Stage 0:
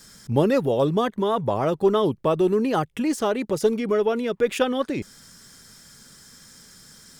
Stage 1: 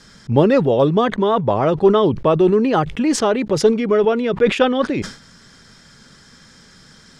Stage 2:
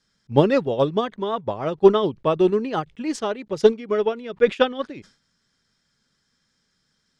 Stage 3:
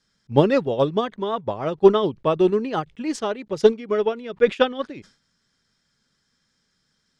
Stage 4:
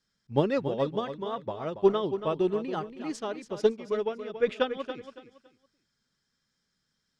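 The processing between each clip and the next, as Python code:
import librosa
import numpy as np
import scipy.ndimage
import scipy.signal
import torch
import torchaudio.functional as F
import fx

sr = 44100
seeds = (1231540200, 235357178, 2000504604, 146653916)

y1 = scipy.signal.sosfilt(scipy.signal.butter(2, 4300.0, 'lowpass', fs=sr, output='sos'), x)
y1 = fx.sustainer(y1, sr, db_per_s=130.0)
y1 = y1 * librosa.db_to_amplitude(6.0)
y2 = fx.peak_eq(y1, sr, hz=4300.0, db=4.0, octaves=2.2)
y2 = fx.upward_expand(y2, sr, threshold_db=-26.0, expansion=2.5)
y2 = y2 * librosa.db_to_amplitude(1.5)
y3 = y2
y4 = fx.echo_feedback(y3, sr, ms=280, feedback_pct=26, wet_db=-10.5)
y4 = y4 * librosa.db_to_amplitude(-8.5)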